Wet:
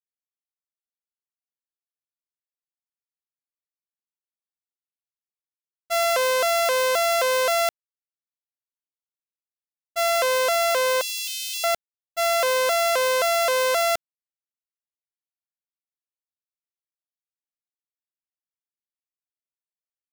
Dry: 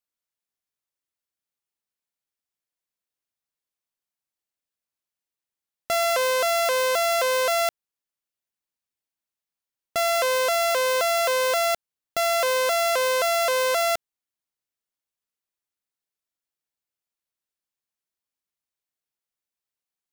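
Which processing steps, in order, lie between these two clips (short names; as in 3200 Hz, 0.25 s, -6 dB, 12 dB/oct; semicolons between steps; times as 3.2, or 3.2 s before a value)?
expander -17 dBFS; 11.01–11.64 elliptic high-pass 2800 Hz, stop band 70 dB; gain +6.5 dB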